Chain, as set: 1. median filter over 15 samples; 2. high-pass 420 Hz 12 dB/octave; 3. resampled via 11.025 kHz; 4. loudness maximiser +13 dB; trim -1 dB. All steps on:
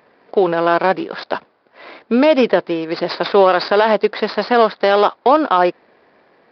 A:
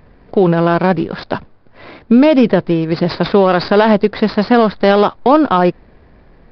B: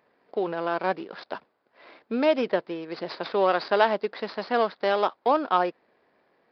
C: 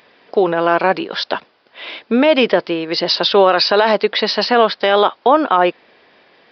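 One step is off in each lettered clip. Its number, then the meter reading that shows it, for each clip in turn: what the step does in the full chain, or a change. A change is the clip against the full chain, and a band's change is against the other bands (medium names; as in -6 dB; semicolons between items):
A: 2, 125 Hz band +14.5 dB; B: 4, crest factor change +6.5 dB; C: 1, 4 kHz band +8.5 dB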